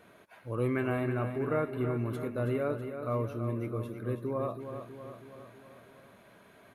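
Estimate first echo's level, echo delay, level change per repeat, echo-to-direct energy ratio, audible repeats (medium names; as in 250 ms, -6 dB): -8.5 dB, 324 ms, -4.5 dB, -6.5 dB, 5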